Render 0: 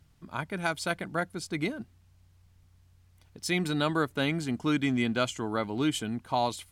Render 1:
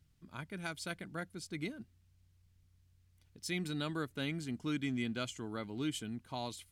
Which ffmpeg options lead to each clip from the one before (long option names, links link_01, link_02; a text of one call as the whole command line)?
ffmpeg -i in.wav -af "equalizer=frequency=830:width=0.84:gain=-8,volume=-7.5dB" out.wav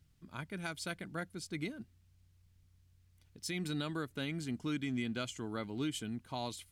ffmpeg -i in.wav -af "alimiter=level_in=4.5dB:limit=-24dB:level=0:latency=1:release=137,volume=-4.5dB,volume=1.5dB" out.wav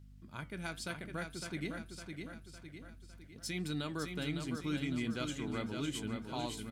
ffmpeg -i in.wav -filter_complex "[0:a]aeval=exprs='val(0)+0.002*(sin(2*PI*50*n/s)+sin(2*PI*2*50*n/s)/2+sin(2*PI*3*50*n/s)/3+sin(2*PI*4*50*n/s)/4+sin(2*PI*5*50*n/s)/5)':channel_layout=same,flanger=delay=5.9:depth=7.5:regen=-76:speed=0.83:shape=triangular,asplit=2[link_01][link_02];[link_02]aecho=0:1:557|1114|1671|2228|2785|3342:0.531|0.265|0.133|0.0664|0.0332|0.0166[link_03];[link_01][link_03]amix=inputs=2:normalize=0,volume=3.5dB" out.wav